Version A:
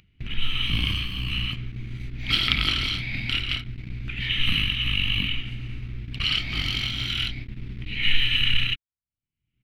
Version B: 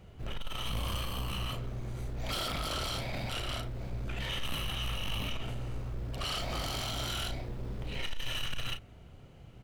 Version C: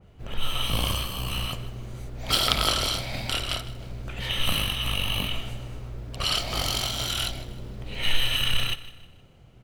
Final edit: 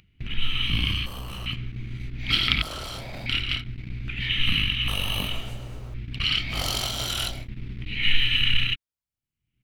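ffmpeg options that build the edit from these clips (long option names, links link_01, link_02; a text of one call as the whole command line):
ffmpeg -i take0.wav -i take1.wav -i take2.wav -filter_complex "[1:a]asplit=2[link_01][link_02];[2:a]asplit=2[link_03][link_04];[0:a]asplit=5[link_05][link_06][link_07][link_08][link_09];[link_05]atrim=end=1.062[link_10];[link_01]atrim=start=1.058:end=1.462[link_11];[link_06]atrim=start=1.458:end=2.622[link_12];[link_02]atrim=start=2.618:end=3.262[link_13];[link_07]atrim=start=3.258:end=4.882[link_14];[link_03]atrim=start=4.878:end=5.942[link_15];[link_08]atrim=start=5.938:end=6.64[link_16];[link_04]atrim=start=6.48:end=7.49[link_17];[link_09]atrim=start=7.33[link_18];[link_10][link_11]acrossfade=duration=0.004:curve1=hsin:curve2=hsin[link_19];[link_19][link_12]acrossfade=duration=0.004:curve1=hsin:curve2=hsin[link_20];[link_20][link_13]acrossfade=duration=0.004:curve1=hsin:curve2=hsin[link_21];[link_21][link_14]acrossfade=duration=0.004:curve1=hsin:curve2=hsin[link_22];[link_22][link_15]acrossfade=duration=0.004:curve1=hsin:curve2=hsin[link_23];[link_23][link_16]acrossfade=duration=0.004:curve1=hsin:curve2=hsin[link_24];[link_24][link_17]acrossfade=duration=0.16:curve1=tri:curve2=tri[link_25];[link_25][link_18]acrossfade=duration=0.16:curve1=tri:curve2=tri" out.wav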